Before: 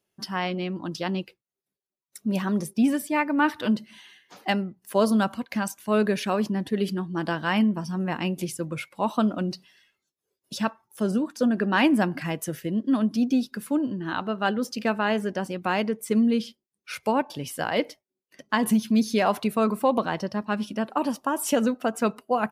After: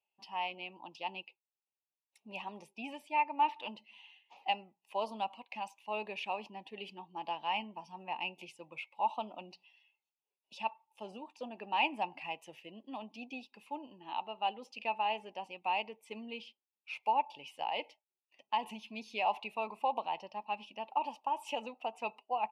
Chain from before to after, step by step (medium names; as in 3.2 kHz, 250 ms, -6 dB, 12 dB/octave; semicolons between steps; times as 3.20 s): two resonant band-passes 1.5 kHz, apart 1.6 oct